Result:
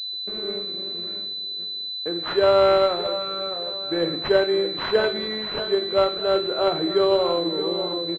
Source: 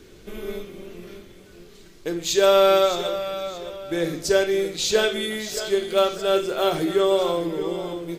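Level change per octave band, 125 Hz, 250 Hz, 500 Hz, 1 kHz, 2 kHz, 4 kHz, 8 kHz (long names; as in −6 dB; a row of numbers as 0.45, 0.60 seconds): −1.5 dB, −0.5 dB, 0.0 dB, 0.0 dB, −2.0 dB, +4.5 dB, below −25 dB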